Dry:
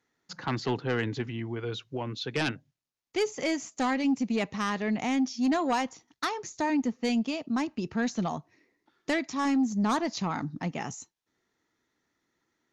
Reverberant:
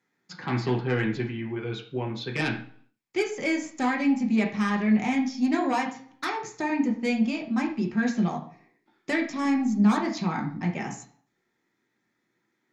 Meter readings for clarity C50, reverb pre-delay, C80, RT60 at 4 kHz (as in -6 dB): 9.0 dB, 3 ms, 12.5 dB, 0.45 s